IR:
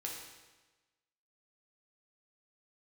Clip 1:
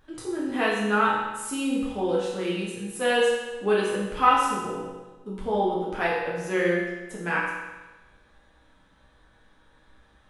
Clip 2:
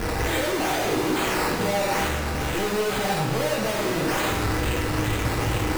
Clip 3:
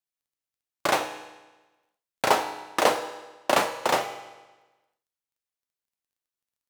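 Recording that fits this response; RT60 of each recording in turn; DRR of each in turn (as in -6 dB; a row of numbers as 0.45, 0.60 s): 2; 1.2, 1.2, 1.2 s; -7.0, -2.0, 7.5 dB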